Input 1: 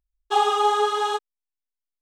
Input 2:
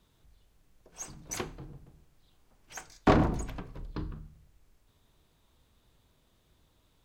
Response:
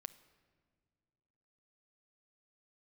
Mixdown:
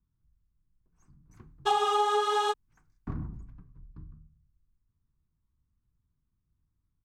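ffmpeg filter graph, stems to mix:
-filter_complex "[0:a]adelay=1350,volume=-0.5dB[a];[1:a]firequalizer=gain_entry='entry(130,0);entry(560,-26);entry(1100,-12);entry(3200,-29);entry(5200,-25)':delay=0.05:min_phase=1,volume=-7.5dB[b];[a][b]amix=inputs=2:normalize=0,acompressor=threshold=-23dB:ratio=4"

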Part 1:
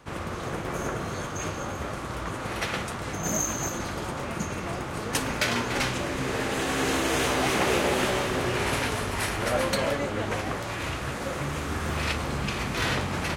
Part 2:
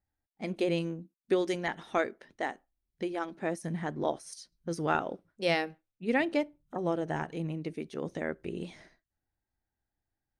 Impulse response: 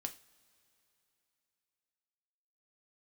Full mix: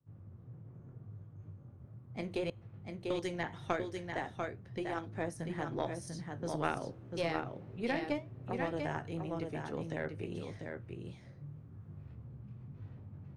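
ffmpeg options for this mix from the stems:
-filter_complex "[0:a]flanger=delay=18.5:depth=7.1:speed=0.77,bandpass=f=130:t=q:w=1.4:csg=0,volume=-12dB[a];[1:a]flanger=delay=9.1:depth=9.7:regen=-58:speed=0.88:shape=triangular,adelay=1750,volume=2dB,asplit=3[b][c][d];[b]atrim=end=2.5,asetpts=PTS-STARTPTS,afade=t=out:st=2.496:d=0.004:c=hsin[e];[c]atrim=start=2.5:end=3.1,asetpts=PTS-STARTPTS,volume=0[f];[d]atrim=start=3.1,asetpts=PTS-STARTPTS,afade=t=in:d=0.004:c=hsin[g];[e][f][g]concat=n=3:v=0:a=1,asplit=3[h][i][j];[i]volume=-12.5dB[k];[j]volume=-4.5dB[l];[2:a]atrim=start_sample=2205[m];[k][m]afir=irnorm=-1:irlink=0[n];[l]aecho=0:1:693:1[o];[a][h][n][o]amix=inputs=4:normalize=0,equalizer=f=110:w=2.5:g=12.5,acrossover=split=250|670|1600[p][q][r][s];[p]acompressor=threshold=-39dB:ratio=4[t];[q]acompressor=threshold=-34dB:ratio=4[u];[r]acompressor=threshold=-36dB:ratio=4[v];[s]acompressor=threshold=-41dB:ratio=4[w];[t][u][v][w]amix=inputs=4:normalize=0,aeval=exprs='0.133*(cos(1*acos(clip(val(0)/0.133,-1,1)))-cos(1*PI/2))+0.0168*(cos(2*acos(clip(val(0)/0.133,-1,1)))-cos(2*PI/2))+0.015*(cos(3*acos(clip(val(0)/0.133,-1,1)))-cos(3*PI/2))':c=same"

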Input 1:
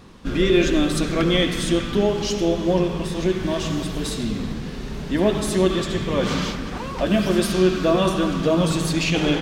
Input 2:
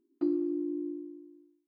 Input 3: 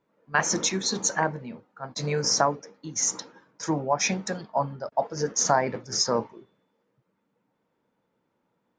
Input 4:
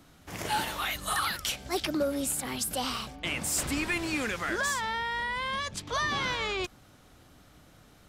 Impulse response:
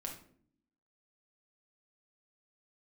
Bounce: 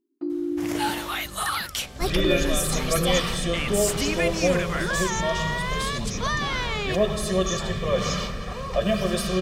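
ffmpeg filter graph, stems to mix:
-filter_complex "[0:a]aecho=1:1:1.7:0.88,adelay=1750,volume=-5dB[a];[1:a]dynaudnorm=f=110:g=7:m=9dB,volume=-3dB[b];[2:a]aemphasis=mode=production:type=riaa,adelay=2100,volume=-19.5dB[c];[3:a]adelay=300,volume=2.5dB[d];[a][b][c][d]amix=inputs=4:normalize=0"

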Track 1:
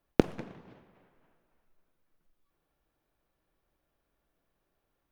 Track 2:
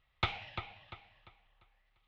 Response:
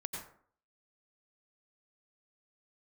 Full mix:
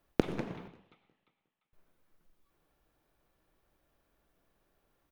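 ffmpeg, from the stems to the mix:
-filter_complex "[0:a]alimiter=limit=-14dB:level=0:latency=1:release=197,volume=2dB,asplit=3[a][b][c];[a]atrim=end=0.68,asetpts=PTS-STARTPTS,afade=t=out:st=0.676:d=0.004:c=hsin[d];[b]atrim=start=0.68:end=1.73,asetpts=PTS-STARTPTS,volume=0[e];[c]atrim=start=1.73,asetpts=PTS-STARTPTS,afade=t=in:d=0.004:c=hsin[f];[d][e][f]concat=n=3:v=0:a=1,asplit=3[g][h][i];[h]volume=-7.5dB[j];[i]volume=-22dB[k];[1:a]highpass=760,volume=-19.5dB,asplit=2[l][m];[m]volume=-4.5dB[n];[2:a]atrim=start_sample=2205[o];[j][n]amix=inputs=2:normalize=0[p];[p][o]afir=irnorm=-1:irlink=0[q];[k]aecho=0:1:180|360|540|720|900|1080|1260:1|0.51|0.26|0.133|0.0677|0.0345|0.0176[r];[g][l][q][r]amix=inputs=4:normalize=0"

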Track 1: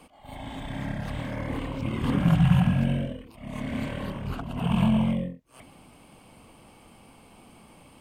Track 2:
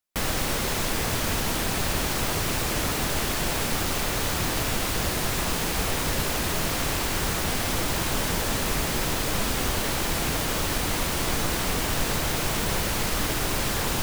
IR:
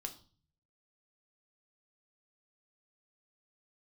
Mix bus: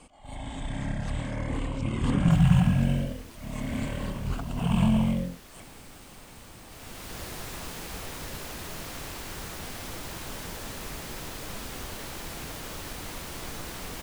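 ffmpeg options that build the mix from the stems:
-filter_complex "[0:a]lowpass=f=7.7k:t=q:w=3.7,lowshelf=f=62:g=12,volume=-2dB[a];[1:a]adelay=2150,volume=-12dB,afade=t=in:st=6.67:d=0.57:silence=0.266073[b];[a][b]amix=inputs=2:normalize=0"

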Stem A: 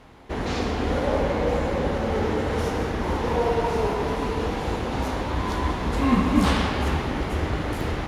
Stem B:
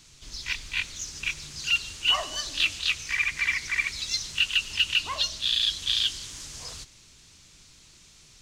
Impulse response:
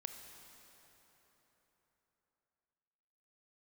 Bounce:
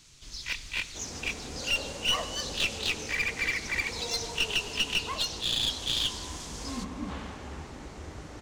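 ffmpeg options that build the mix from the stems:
-filter_complex "[0:a]lowpass=3.7k,adelay=650,volume=-17dB[a];[1:a]volume=-4dB,asplit=2[b][c];[c]volume=-9.5dB[d];[2:a]atrim=start_sample=2205[e];[d][e]afir=irnorm=-1:irlink=0[f];[a][b][f]amix=inputs=3:normalize=0,aeval=exprs='clip(val(0),-1,0.0422)':c=same"

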